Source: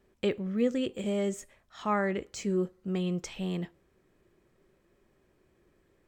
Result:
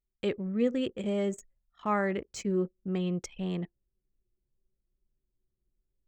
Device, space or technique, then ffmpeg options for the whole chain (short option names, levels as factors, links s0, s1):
voice memo with heavy noise removal: -af "anlmdn=0.251,dynaudnorm=f=160:g=3:m=2.82,volume=0.355"